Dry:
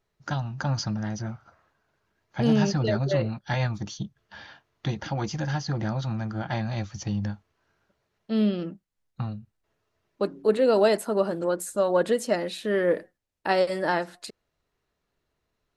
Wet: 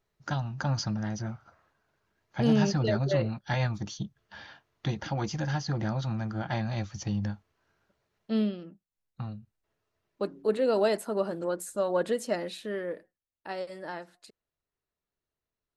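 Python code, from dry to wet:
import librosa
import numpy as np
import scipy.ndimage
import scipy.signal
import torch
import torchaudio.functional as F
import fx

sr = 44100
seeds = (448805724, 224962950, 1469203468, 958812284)

y = fx.gain(x, sr, db=fx.line((8.36, -2.0), (8.62, -12.5), (9.3, -5.0), (12.54, -5.0), (12.95, -13.5)))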